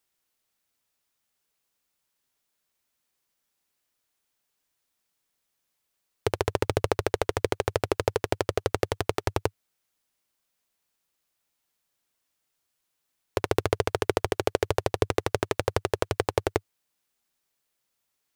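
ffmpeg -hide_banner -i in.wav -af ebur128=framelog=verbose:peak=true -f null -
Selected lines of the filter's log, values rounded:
Integrated loudness:
  I:         -28.7 LUFS
  Threshold: -38.7 LUFS
Loudness range:
  LRA:         9.1 LU
  Threshold: -50.7 LUFS
  LRA low:   -37.4 LUFS
  LRA high:  -28.3 LUFS
True peak:
  Peak:       -4.9 dBFS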